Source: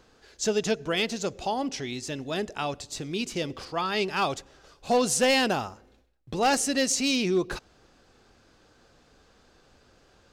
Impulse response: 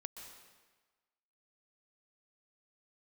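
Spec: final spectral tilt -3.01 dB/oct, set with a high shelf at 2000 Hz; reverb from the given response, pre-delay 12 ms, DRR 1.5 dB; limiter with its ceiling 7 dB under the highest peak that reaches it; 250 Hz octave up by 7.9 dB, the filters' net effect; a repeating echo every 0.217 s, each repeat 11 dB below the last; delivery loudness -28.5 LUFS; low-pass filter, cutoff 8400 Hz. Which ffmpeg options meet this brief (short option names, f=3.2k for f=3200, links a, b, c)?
-filter_complex "[0:a]lowpass=8.4k,equalizer=f=250:t=o:g=9,highshelf=f=2k:g=9,alimiter=limit=-14dB:level=0:latency=1,aecho=1:1:217|434|651:0.282|0.0789|0.0221,asplit=2[a][b];[1:a]atrim=start_sample=2205,adelay=12[c];[b][c]afir=irnorm=-1:irlink=0,volume=2dB[d];[a][d]amix=inputs=2:normalize=0,volume=-7dB"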